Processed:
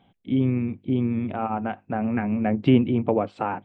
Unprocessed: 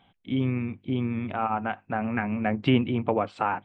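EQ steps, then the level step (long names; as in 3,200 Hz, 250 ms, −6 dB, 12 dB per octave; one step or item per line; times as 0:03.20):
low-shelf EQ 120 Hz −7.5 dB
parametric band 1,200 Hz −7.5 dB 1.9 octaves
high-shelf EQ 2,000 Hz −11.5 dB
+7.0 dB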